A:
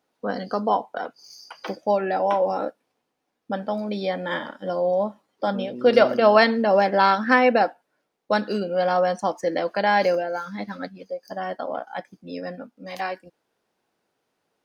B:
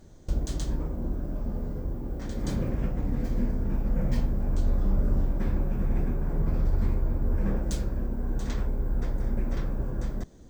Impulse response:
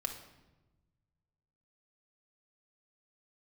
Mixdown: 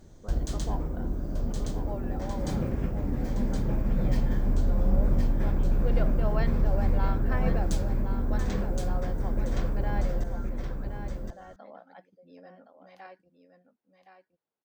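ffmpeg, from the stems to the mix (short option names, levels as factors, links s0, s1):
-filter_complex "[0:a]highshelf=f=4400:g=-11,volume=0.119,asplit=2[s0][s1];[s1]volume=0.376[s2];[1:a]volume=0.944,asplit=2[s3][s4];[s4]volume=0.631[s5];[s2][s5]amix=inputs=2:normalize=0,aecho=0:1:1068:1[s6];[s0][s3][s6]amix=inputs=3:normalize=0"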